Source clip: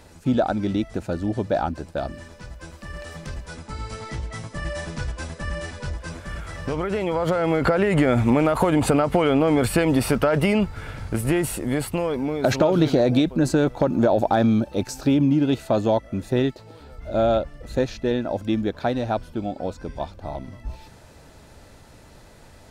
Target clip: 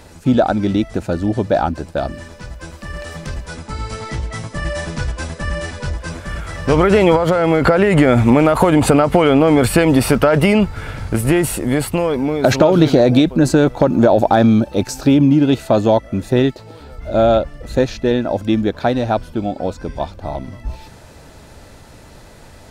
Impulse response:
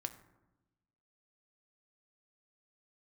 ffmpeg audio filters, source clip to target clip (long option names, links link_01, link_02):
-filter_complex "[0:a]asplit=3[link_01][link_02][link_03];[link_01]afade=type=out:start_time=6.68:duration=0.02[link_04];[link_02]acontrast=71,afade=type=in:start_time=6.68:duration=0.02,afade=type=out:start_time=7.15:duration=0.02[link_05];[link_03]afade=type=in:start_time=7.15:duration=0.02[link_06];[link_04][link_05][link_06]amix=inputs=3:normalize=0,volume=7dB"